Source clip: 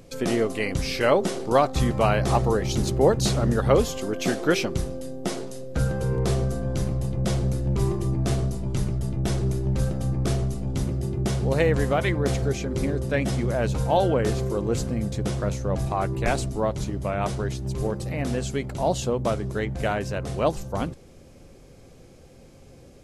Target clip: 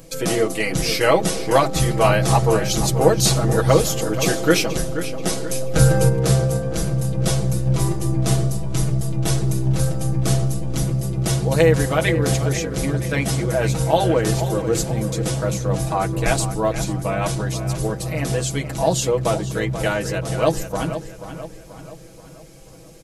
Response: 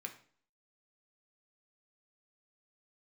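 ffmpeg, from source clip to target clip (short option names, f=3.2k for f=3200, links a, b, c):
-filter_complex "[0:a]asettb=1/sr,asplit=3[a][b][c];[a]atrim=end=5.504[d];[b]atrim=start=5.5:end=6.09,asetpts=PTS-STARTPTS,afade=t=in:d=0.004:c=qsin,afade=t=out:st=0.586:d=0.004:c=qsin,acontrast=58[e];[c]atrim=start=6.086[f];[d][e]acrossfade=d=0.004:c1=hsin:c2=qsin[g];[g][f]acrossfade=d=0.004:c1=qsin:c2=hsin,bandreject=f=50:t=h:w=6,bandreject=f=100:t=h:w=6,bandreject=f=150:t=h:w=6,bandreject=f=200:t=h:w=6,bandreject=f=250:t=h:w=6,bandreject=f=300:t=h:w=6,bandreject=f=350:t=h:w=6,aecho=1:1:6.2:0.84,asplit=2[h][i];[i]adelay=482,lowpass=f=4.1k:p=1,volume=-10.5dB,asplit=2[j][k];[k]adelay=482,lowpass=f=4.1k:p=1,volume=0.5,asplit=2[l][m];[m]adelay=482,lowpass=f=4.1k:p=1,volume=0.5,asplit=2[n][o];[o]adelay=482,lowpass=f=4.1k:p=1,volume=0.5,asplit=2[p][q];[q]adelay=482,lowpass=f=4.1k:p=1,volume=0.5[r];[j][l][n][p][r]amix=inputs=5:normalize=0[s];[h][s]amix=inputs=2:normalize=0,crystalizer=i=1.5:c=0,volume=2dB"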